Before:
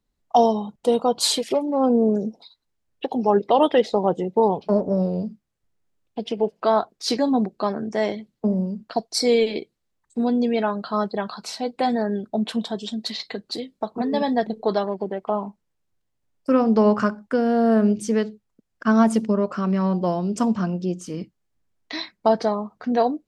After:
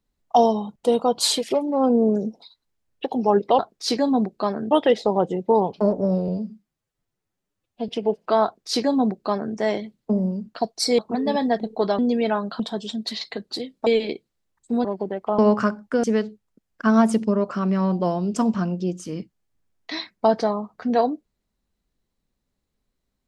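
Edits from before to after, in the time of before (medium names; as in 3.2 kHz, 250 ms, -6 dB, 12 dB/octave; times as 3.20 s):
5.16–6.23 s: stretch 1.5×
6.79–7.91 s: copy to 3.59 s
9.33–10.31 s: swap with 13.85–14.85 s
10.92–12.58 s: delete
15.39–16.78 s: delete
17.43–18.05 s: delete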